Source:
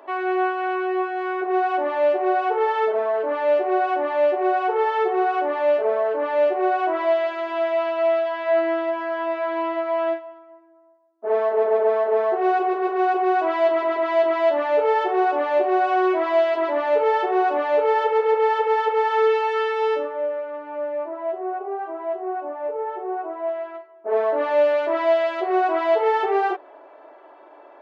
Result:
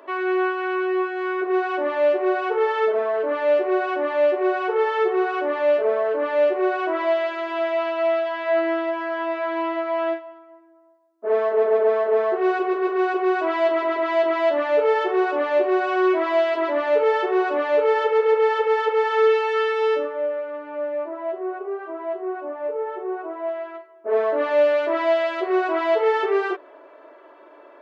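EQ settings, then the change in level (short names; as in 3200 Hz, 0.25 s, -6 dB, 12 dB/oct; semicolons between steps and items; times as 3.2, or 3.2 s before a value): bell 790 Hz -14 dB 0.26 oct; +2.0 dB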